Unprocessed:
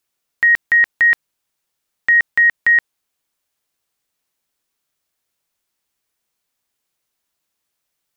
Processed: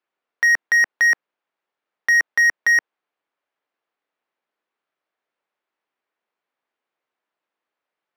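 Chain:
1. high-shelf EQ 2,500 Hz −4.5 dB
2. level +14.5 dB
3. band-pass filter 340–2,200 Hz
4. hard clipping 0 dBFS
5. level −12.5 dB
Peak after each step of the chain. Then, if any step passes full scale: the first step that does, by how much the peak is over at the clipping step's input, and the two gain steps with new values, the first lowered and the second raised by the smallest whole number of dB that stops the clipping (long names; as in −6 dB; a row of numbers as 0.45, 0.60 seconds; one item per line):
−9.5, +5.0, +4.5, 0.0, −12.5 dBFS
step 2, 4.5 dB
step 2 +9.5 dB, step 5 −7.5 dB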